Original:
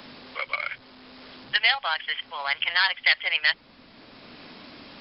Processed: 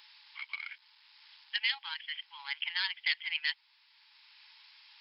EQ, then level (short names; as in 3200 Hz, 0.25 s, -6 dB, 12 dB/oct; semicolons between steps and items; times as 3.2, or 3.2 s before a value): brick-wall FIR high-pass 820 Hz; bell 1200 Hz -14 dB 0.86 oct; -7.5 dB